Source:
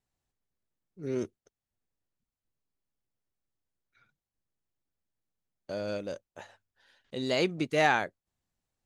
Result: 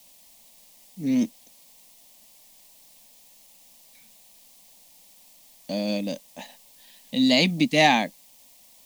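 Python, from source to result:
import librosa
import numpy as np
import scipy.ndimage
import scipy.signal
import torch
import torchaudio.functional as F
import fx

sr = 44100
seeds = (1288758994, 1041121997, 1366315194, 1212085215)

p1 = fx.graphic_eq(x, sr, hz=(250, 500, 2000, 4000), db=(10, -6, 6, 6))
p2 = fx.quant_dither(p1, sr, seeds[0], bits=8, dither='triangular')
p3 = p1 + F.gain(torch.from_numpy(p2), -11.0).numpy()
p4 = fx.fixed_phaser(p3, sr, hz=380.0, stages=6)
y = F.gain(torch.from_numpy(p4), 6.0).numpy()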